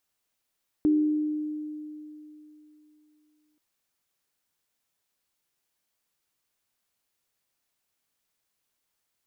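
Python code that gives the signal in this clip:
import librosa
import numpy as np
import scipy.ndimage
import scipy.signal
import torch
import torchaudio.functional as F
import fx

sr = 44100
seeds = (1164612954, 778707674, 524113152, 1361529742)

y = fx.additive_free(sr, length_s=2.73, hz=303.0, level_db=-17.5, upper_db=(-16.5,), decay_s=3.15, upper_decays_s=(1.32,), upper_hz=(386.0,))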